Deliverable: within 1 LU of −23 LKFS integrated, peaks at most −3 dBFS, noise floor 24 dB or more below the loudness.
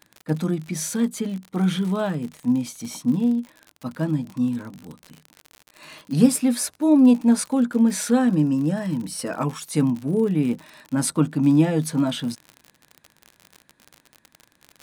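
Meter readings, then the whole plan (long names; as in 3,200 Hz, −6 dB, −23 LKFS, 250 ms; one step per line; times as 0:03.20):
crackle rate 54 per second; integrated loudness −22.0 LKFS; sample peak −4.0 dBFS; target loudness −23.0 LKFS
→ click removal
level −1 dB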